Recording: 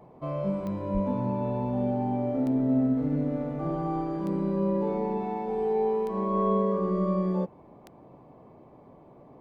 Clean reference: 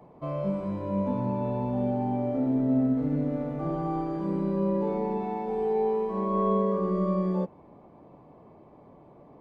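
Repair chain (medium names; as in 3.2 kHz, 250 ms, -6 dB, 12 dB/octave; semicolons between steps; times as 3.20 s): de-click; de-hum 127.5 Hz, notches 6; 0.93–1.05 s: high-pass 140 Hz 24 dB/octave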